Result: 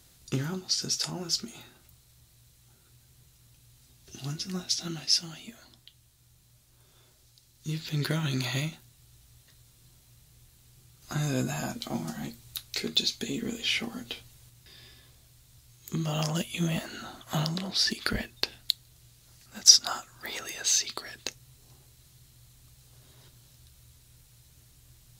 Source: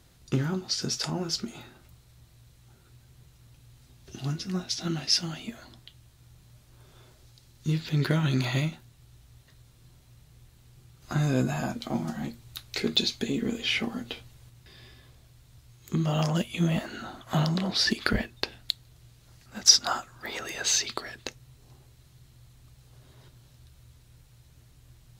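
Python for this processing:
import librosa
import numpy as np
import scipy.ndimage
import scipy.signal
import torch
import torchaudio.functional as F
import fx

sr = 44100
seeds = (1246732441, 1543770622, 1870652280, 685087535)

p1 = fx.high_shelf(x, sr, hz=3700.0, db=11.5)
p2 = fx.rider(p1, sr, range_db=5, speed_s=0.5)
p3 = p1 + (p2 * 10.0 ** (1.0 / 20.0))
y = p3 * 10.0 ** (-13.0 / 20.0)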